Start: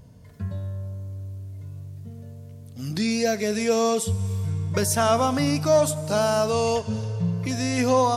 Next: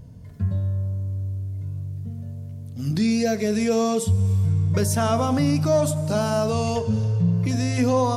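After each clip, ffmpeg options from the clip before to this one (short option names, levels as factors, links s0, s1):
-filter_complex "[0:a]lowshelf=f=370:g=9.5,bandreject=f=65.65:t=h:w=4,bandreject=f=131.3:t=h:w=4,bandreject=f=196.95:t=h:w=4,bandreject=f=262.6:t=h:w=4,bandreject=f=328.25:t=h:w=4,bandreject=f=393.9:t=h:w=4,bandreject=f=459.55:t=h:w=4,bandreject=f=525.2:t=h:w=4,bandreject=f=590.85:t=h:w=4,bandreject=f=656.5:t=h:w=4,bandreject=f=722.15:t=h:w=4,bandreject=f=787.8:t=h:w=4,bandreject=f=853.45:t=h:w=4,bandreject=f=919.1:t=h:w=4,bandreject=f=984.75:t=h:w=4,bandreject=f=1050.4:t=h:w=4,bandreject=f=1116.05:t=h:w=4,bandreject=f=1181.7:t=h:w=4,asplit=2[s0][s1];[s1]alimiter=limit=0.211:level=0:latency=1,volume=0.944[s2];[s0][s2]amix=inputs=2:normalize=0,volume=0.422"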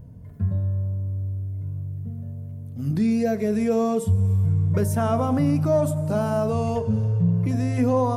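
-af "equalizer=f=4900:w=0.58:g=-13.5"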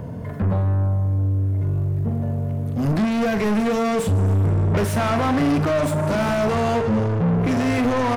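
-filter_complex "[0:a]acrossover=split=320|1400[s0][s1][s2];[s1]acompressor=threshold=0.0178:ratio=6[s3];[s0][s3][s2]amix=inputs=3:normalize=0,asplit=2[s4][s5];[s5]highpass=f=720:p=1,volume=50.1,asoftclip=type=tanh:threshold=0.266[s6];[s4][s6]amix=inputs=2:normalize=0,lowpass=f=1800:p=1,volume=0.501,asplit=2[s7][s8];[s8]adelay=42,volume=0.251[s9];[s7][s9]amix=inputs=2:normalize=0,volume=0.841"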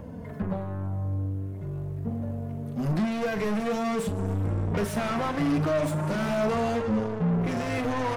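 -af "flanger=delay=3.6:depth=3.1:regen=-24:speed=0.44:shape=triangular,volume=0.708"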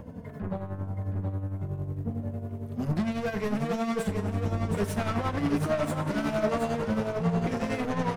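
-filter_complex "[0:a]tremolo=f=11:d=0.59,asplit=2[s0][s1];[s1]aecho=0:1:722:0.531[s2];[s0][s2]amix=inputs=2:normalize=0"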